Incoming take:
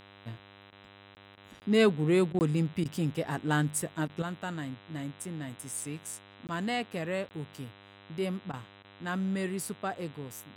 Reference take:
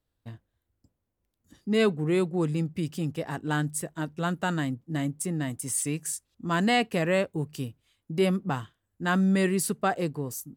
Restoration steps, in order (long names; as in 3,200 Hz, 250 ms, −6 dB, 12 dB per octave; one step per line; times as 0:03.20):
hum removal 100 Hz, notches 40
repair the gap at 0:01.15/0:01.60/0:02.39/0:06.47/0:07.29, 19 ms
repair the gap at 0:00.71/0:01.36/0:02.33/0:02.84/0:04.08/0:08.52/0:08.83, 12 ms
level correction +8.5 dB, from 0:04.22